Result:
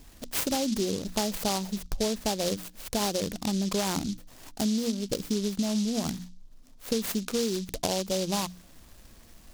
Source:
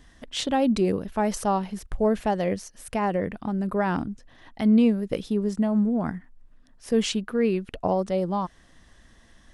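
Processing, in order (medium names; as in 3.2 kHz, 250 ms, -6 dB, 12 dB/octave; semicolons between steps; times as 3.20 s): hum notches 60/120/180/240/300 Hz; compression 12:1, threshold -27 dBFS, peak gain reduction 12.5 dB; delay time shaken by noise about 4.7 kHz, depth 0.15 ms; trim +2.5 dB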